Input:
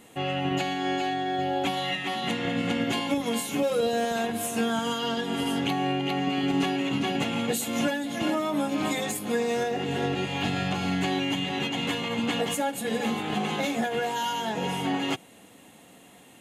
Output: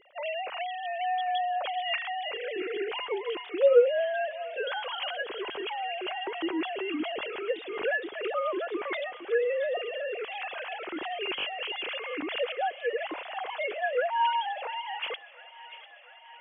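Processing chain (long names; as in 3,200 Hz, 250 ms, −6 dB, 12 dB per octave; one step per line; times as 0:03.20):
three sine waves on the formant tracks
on a send: delay with a high-pass on its return 696 ms, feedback 72%, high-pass 1,400 Hz, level −14 dB
on the sum: level −3 dB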